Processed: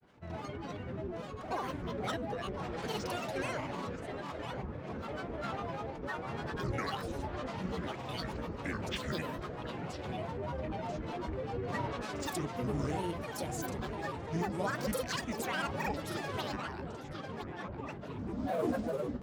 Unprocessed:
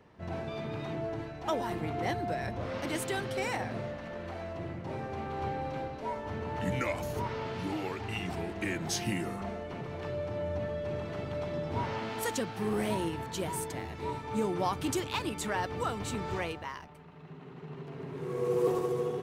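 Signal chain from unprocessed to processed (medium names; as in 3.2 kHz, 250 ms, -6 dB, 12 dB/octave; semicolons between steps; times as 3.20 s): filtered feedback delay 997 ms, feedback 76%, low-pass 3.2 kHz, level -7.5 dB; granulator, grains 20 per s, spray 34 ms, pitch spread up and down by 12 st; trim -3 dB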